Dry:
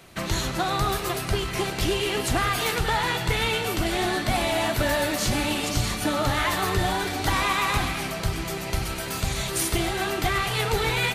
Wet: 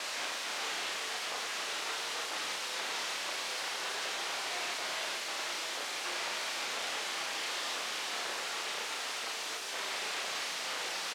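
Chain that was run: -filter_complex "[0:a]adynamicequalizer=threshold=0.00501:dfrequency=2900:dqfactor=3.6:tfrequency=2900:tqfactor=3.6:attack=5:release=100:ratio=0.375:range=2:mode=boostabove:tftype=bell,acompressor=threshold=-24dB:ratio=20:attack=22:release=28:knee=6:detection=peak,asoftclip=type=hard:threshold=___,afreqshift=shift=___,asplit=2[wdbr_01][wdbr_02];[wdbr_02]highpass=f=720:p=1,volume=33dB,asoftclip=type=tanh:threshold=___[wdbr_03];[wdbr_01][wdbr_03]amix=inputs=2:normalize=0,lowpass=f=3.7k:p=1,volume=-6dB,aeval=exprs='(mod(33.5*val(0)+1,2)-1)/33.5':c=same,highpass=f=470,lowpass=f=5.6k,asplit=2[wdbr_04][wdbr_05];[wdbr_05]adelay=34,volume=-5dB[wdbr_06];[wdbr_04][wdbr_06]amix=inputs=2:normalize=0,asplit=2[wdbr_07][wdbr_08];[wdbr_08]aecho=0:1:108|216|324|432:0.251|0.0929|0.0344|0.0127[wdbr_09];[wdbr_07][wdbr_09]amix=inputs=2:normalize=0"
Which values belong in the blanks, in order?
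-27dB, 58, -16.5dB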